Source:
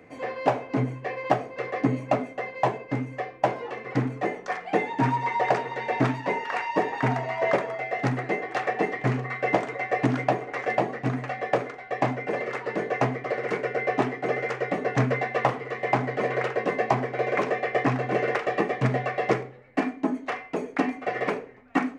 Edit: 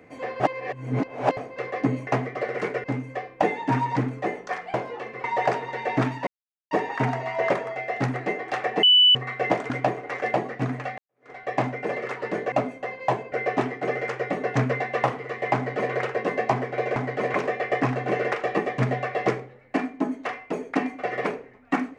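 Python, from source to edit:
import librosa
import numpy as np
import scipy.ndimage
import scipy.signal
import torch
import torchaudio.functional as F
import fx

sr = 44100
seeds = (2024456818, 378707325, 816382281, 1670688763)

y = fx.edit(x, sr, fx.reverse_span(start_s=0.4, length_s=0.97),
    fx.swap(start_s=2.07, length_s=0.8, other_s=12.96, other_length_s=0.77),
    fx.swap(start_s=3.45, length_s=0.5, other_s=4.73, other_length_s=0.54),
    fx.silence(start_s=6.3, length_s=0.44),
    fx.bleep(start_s=8.86, length_s=0.32, hz=2980.0, db=-12.0),
    fx.cut(start_s=9.73, length_s=0.41),
    fx.fade_in_span(start_s=11.42, length_s=0.33, curve='exp'),
    fx.duplicate(start_s=15.96, length_s=0.38, to_s=17.37), tone=tone)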